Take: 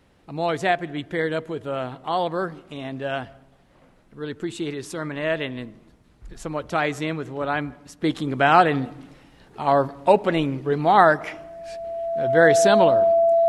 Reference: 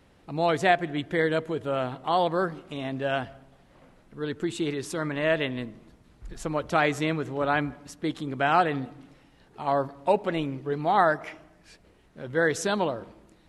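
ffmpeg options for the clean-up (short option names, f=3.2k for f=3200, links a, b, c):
-af "bandreject=f=670:w=30,asetnsamples=n=441:p=0,asendcmd='8.01 volume volume -6.5dB',volume=0dB"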